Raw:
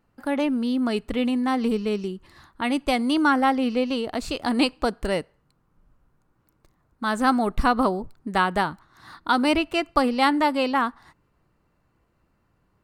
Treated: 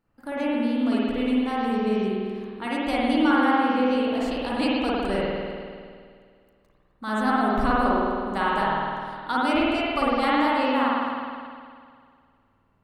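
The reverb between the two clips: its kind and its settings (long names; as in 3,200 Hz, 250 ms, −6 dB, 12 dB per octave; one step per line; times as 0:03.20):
spring reverb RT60 2.1 s, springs 51 ms, chirp 75 ms, DRR −7 dB
level −8 dB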